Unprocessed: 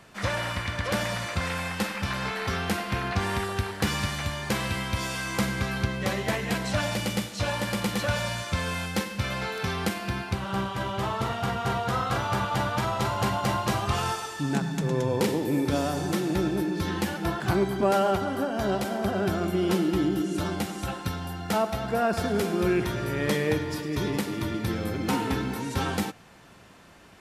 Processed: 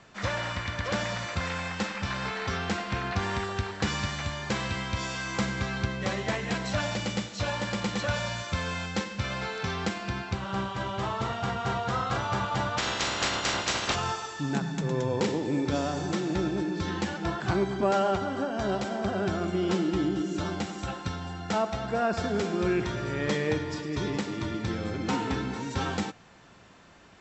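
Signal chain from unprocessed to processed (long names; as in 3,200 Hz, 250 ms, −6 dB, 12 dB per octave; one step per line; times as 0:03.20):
0:12.77–0:13.94: ceiling on every frequency bin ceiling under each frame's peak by 24 dB
Chebyshev low-pass filter 7,800 Hz, order 10
level −1.5 dB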